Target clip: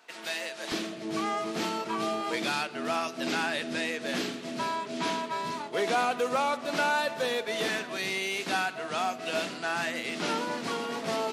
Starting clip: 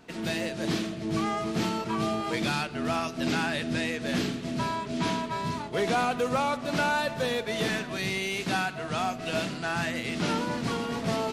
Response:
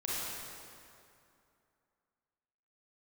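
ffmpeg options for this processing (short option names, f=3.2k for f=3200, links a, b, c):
-af "asetnsamples=n=441:p=0,asendcmd='0.72 highpass f 310',highpass=730"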